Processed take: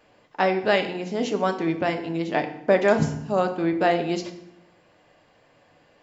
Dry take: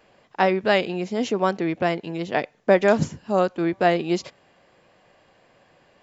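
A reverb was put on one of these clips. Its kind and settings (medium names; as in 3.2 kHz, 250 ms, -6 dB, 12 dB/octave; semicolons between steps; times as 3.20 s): FDN reverb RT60 0.77 s, low-frequency decay 1.5×, high-frequency decay 0.8×, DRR 5.5 dB; trim -2 dB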